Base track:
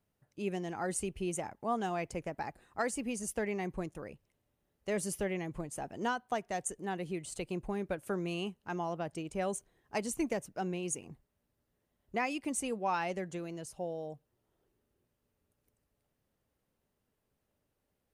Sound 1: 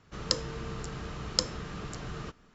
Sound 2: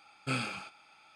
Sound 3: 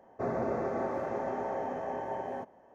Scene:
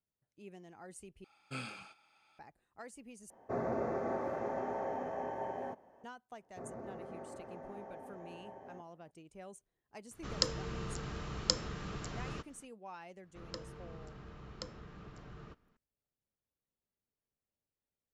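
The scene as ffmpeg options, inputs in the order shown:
-filter_complex "[3:a]asplit=2[s0][s1];[1:a]asplit=2[s2][s3];[0:a]volume=0.158[s4];[s1]lowshelf=f=380:g=4.5[s5];[s3]aemphasis=mode=reproduction:type=75fm[s6];[s4]asplit=3[s7][s8][s9];[s7]atrim=end=1.244[s10];[2:a]atrim=end=1.15,asetpts=PTS-STARTPTS,volume=0.335[s11];[s8]atrim=start=2.386:end=3.304[s12];[s0]atrim=end=2.74,asetpts=PTS-STARTPTS,volume=0.668[s13];[s9]atrim=start=6.036[s14];[s5]atrim=end=2.74,asetpts=PTS-STARTPTS,volume=0.15,afade=t=in:d=0.004:c=hsin,afade=t=out:st=2.736:d=0.004:c=hsin,adelay=6370[s15];[s2]atrim=end=2.54,asetpts=PTS-STARTPTS,volume=0.708,afade=t=in:d=0.004:c=hsin,afade=t=out:st=2.536:d=0.004:c=hsin,adelay=10110[s16];[s6]atrim=end=2.54,asetpts=PTS-STARTPTS,volume=0.237,afade=t=in:d=0.004:c=hsin,afade=t=out:st=2.536:d=0.004:c=hsin,adelay=13230[s17];[s10][s11]acrossfade=d=0.004:c1=hsin:c2=hsin[s18];[s18][s12]acrossfade=d=0.004:c1=hsin:c2=hsin[s19];[s19][s13]acrossfade=d=0.004:c1=hsin:c2=hsin[s20];[s20][s14]acrossfade=d=0.004:c1=hsin:c2=hsin[s21];[s21][s15][s16][s17]amix=inputs=4:normalize=0"

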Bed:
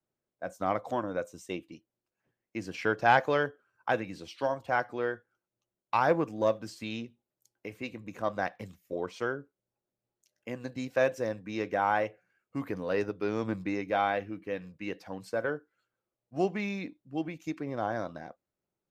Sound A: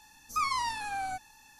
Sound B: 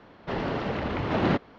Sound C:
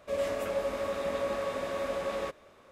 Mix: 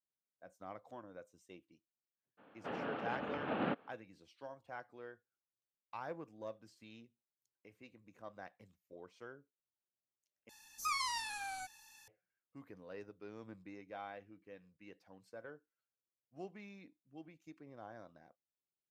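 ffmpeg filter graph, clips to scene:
-filter_complex "[0:a]volume=0.106[s0];[2:a]highpass=280,equalizer=f=370:t=q:w=4:g=-9,equalizer=f=640:t=q:w=4:g=-4,equalizer=f=1000:t=q:w=4:g=-7,equalizer=f=2000:t=q:w=4:g=-9,lowpass=f=2800:w=0.5412,lowpass=f=2800:w=1.3066[s1];[1:a]tiltshelf=f=1100:g=-7[s2];[s0]asplit=2[s3][s4];[s3]atrim=end=10.494[s5];[s2]atrim=end=1.59,asetpts=PTS-STARTPTS,volume=0.376[s6];[s4]atrim=start=12.076[s7];[s1]atrim=end=1.58,asetpts=PTS-STARTPTS,volume=0.473,afade=t=in:d=0.02,afade=t=out:st=1.56:d=0.02,adelay=2370[s8];[s5][s6]acrossfade=d=0.004:c1=hsin:c2=hsin[s9];[s9][s7]acrossfade=d=0.004:c1=hsin:c2=hsin[s10];[s10][s8]amix=inputs=2:normalize=0"

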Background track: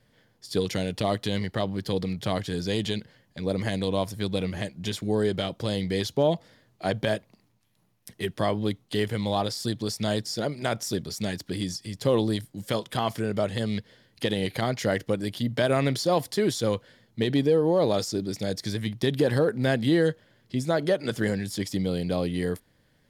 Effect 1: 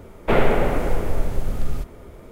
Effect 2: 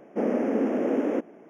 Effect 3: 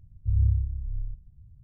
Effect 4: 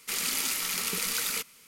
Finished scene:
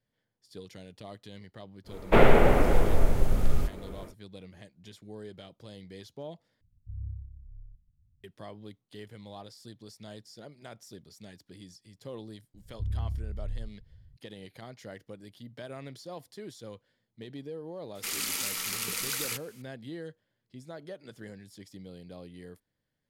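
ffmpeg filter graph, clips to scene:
-filter_complex "[3:a]asplit=2[s0][s1];[0:a]volume=0.112[s2];[s0]firequalizer=gain_entry='entry(160,0);entry(260,6);entry(530,-24)':delay=0.05:min_phase=1[s3];[s1]acompressor=threshold=0.0631:ratio=6:attack=3.2:release=140:knee=1:detection=peak[s4];[s2]asplit=2[s5][s6];[s5]atrim=end=6.614[s7];[s3]atrim=end=1.63,asetpts=PTS-STARTPTS,volume=0.158[s8];[s6]atrim=start=8.236[s9];[1:a]atrim=end=2.31,asetpts=PTS-STARTPTS,volume=0.944,afade=t=in:d=0.1,afade=t=out:st=2.21:d=0.1,adelay=1840[s10];[s4]atrim=end=1.63,asetpts=PTS-STARTPTS,volume=0.668,afade=t=in:d=0.004:c=hsin,afade=t=out:st=1.626:d=0.004:c=hsin,adelay=12540[s11];[4:a]atrim=end=1.67,asetpts=PTS-STARTPTS,volume=0.708,afade=t=in:d=0.004:c=hsin,afade=t=out:st=1.666:d=0.004:c=hsin,adelay=17950[s12];[s7][s8]acrossfade=d=0.004:c1=hsin:c2=hsin[s13];[s13][s9]acrossfade=d=0.004:c1=hsin:c2=hsin[s14];[s14][s10][s11][s12]amix=inputs=4:normalize=0"

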